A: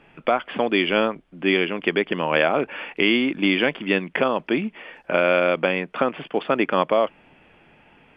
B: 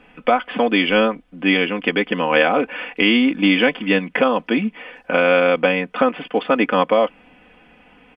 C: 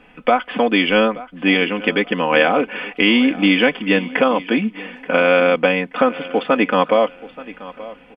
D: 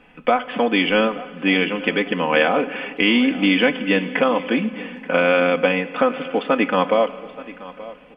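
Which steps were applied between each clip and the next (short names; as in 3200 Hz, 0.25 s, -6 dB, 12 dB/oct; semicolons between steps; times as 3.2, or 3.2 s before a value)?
comb 4 ms, depth 75%; gain +2 dB
feedback echo 0.879 s, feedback 29%, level -18 dB; gain +1 dB
reverb RT60 1.9 s, pre-delay 3 ms, DRR 13 dB; gain -2.5 dB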